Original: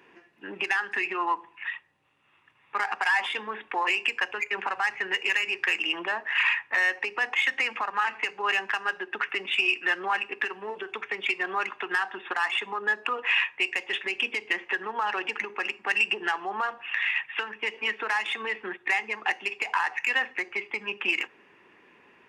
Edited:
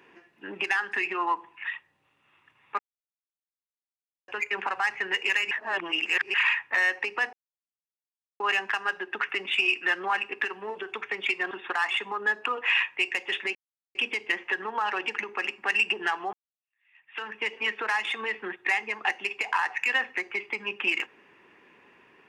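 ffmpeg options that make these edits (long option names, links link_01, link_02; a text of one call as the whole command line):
ffmpeg -i in.wav -filter_complex "[0:a]asplit=10[link_01][link_02][link_03][link_04][link_05][link_06][link_07][link_08][link_09][link_10];[link_01]atrim=end=2.79,asetpts=PTS-STARTPTS,afade=type=out:start_time=2.786:duration=0.004:curve=hsin[link_11];[link_02]atrim=start=2.79:end=4.28,asetpts=PTS-STARTPTS,volume=0[link_12];[link_03]atrim=start=4.28:end=5.512,asetpts=PTS-STARTPTS,afade=type=in:duration=0.004:curve=hsin[link_13];[link_04]atrim=start=5.508:end=6.342,asetpts=PTS-STARTPTS,areverse[link_14];[link_05]atrim=start=6.338:end=7.33,asetpts=PTS-STARTPTS,afade=type=out:start_time=0.988:duration=0.004:curve=hsin[link_15];[link_06]atrim=start=7.33:end=8.4,asetpts=PTS-STARTPTS,volume=0[link_16];[link_07]atrim=start=8.4:end=11.512,asetpts=PTS-STARTPTS,afade=type=in:duration=0.004:curve=hsin[link_17];[link_08]atrim=start=12.118:end=14.16,asetpts=PTS-STARTPTS,afade=type=out:start_time=2.038:duration=0.004:curve=hsin,apad=pad_dur=0.4[link_18];[link_09]atrim=start=14.16:end=16.54,asetpts=PTS-STARTPTS,afade=type=in:duration=0.004:curve=hsin,afade=type=out:start_time=2.376:duration=0.004:curve=hsin[link_19];[link_10]atrim=start=16.54,asetpts=PTS-STARTPTS,afade=type=in:duration=0.91:curve=exp[link_20];[link_11][link_12][link_13]concat=n=3:v=0:a=1[link_21];[link_21][link_14]acrossfade=duration=0.004:curve1=hsin:curve2=hsin[link_22];[link_15][link_16][link_17]concat=n=3:v=0:a=1[link_23];[link_22][link_23]acrossfade=duration=0.004:curve1=hsin:curve2=hsin[link_24];[link_18][link_19][link_20]concat=n=3:v=0:a=1[link_25];[link_24][link_25]acrossfade=duration=0.004:curve1=hsin:curve2=hsin" out.wav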